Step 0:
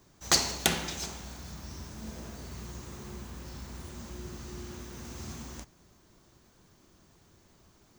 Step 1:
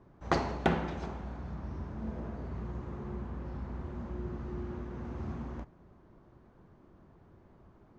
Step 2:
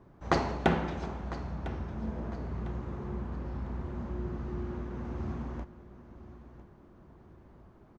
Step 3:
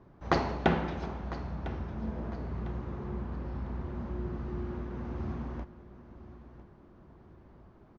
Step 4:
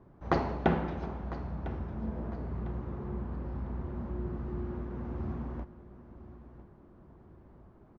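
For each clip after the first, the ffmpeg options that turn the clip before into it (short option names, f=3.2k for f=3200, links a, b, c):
-af "lowpass=1.2k,volume=4dB"
-af "aecho=1:1:1002|2004|3006:0.168|0.0588|0.0206,volume=2dB"
-af "lowpass=f=5.9k:w=0.5412,lowpass=f=5.9k:w=1.3066"
-af "highshelf=f=2.3k:g=-10"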